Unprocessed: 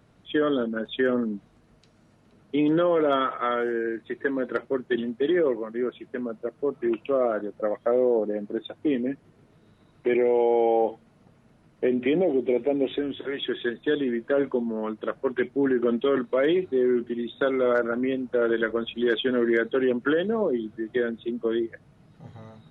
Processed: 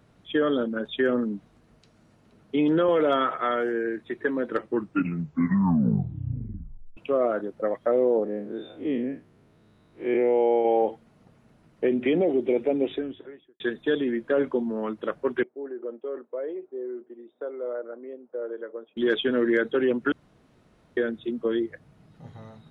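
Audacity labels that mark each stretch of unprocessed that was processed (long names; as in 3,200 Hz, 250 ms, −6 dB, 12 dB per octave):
2.880000	3.360000	multiband upward and downward compressor depth 70%
4.450000	4.450000	tape stop 2.52 s
8.240000	10.650000	spectrum smeared in time width 105 ms
12.720000	13.600000	fade out and dull
15.430000	18.970000	four-pole ladder band-pass 590 Hz, resonance 30%
20.120000	20.970000	fill with room tone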